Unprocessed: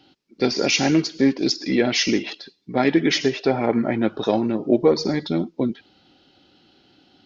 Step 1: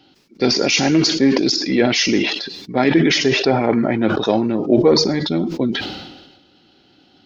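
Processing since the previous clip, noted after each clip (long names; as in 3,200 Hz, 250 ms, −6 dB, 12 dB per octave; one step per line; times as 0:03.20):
level that may fall only so fast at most 47 dB per second
level +2.5 dB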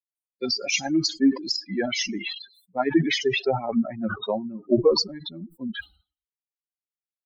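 spectral dynamics exaggerated over time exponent 3
level −1.5 dB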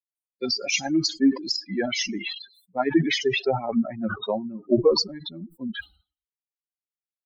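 no processing that can be heard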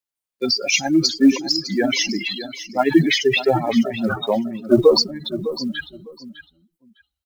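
one scale factor per block 7 bits
repeating echo 605 ms, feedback 18%, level −13 dB
level +6 dB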